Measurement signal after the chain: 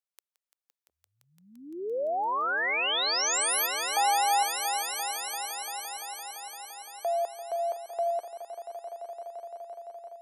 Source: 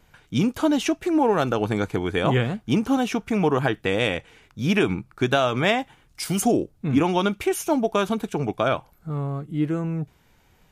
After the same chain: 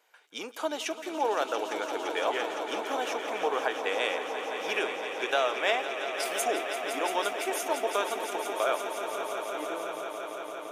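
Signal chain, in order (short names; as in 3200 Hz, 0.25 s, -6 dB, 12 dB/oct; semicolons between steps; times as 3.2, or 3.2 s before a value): HPF 450 Hz 24 dB/oct; on a send: swelling echo 0.171 s, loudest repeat 5, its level -11 dB; on the sum: gain -5.5 dB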